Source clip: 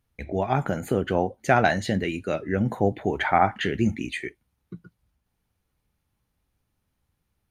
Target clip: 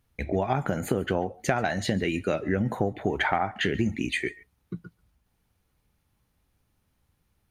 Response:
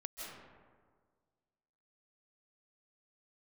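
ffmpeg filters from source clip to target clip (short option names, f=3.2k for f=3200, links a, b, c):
-filter_complex "[0:a]acompressor=threshold=-25dB:ratio=12,asplit=2[a][b];[1:a]atrim=start_sample=2205,afade=t=out:st=0.19:d=0.01,atrim=end_sample=8820[c];[b][c]afir=irnorm=-1:irlink=0,volume=0.5dB[d];[a][d]amix=inputs=2:normalize=0"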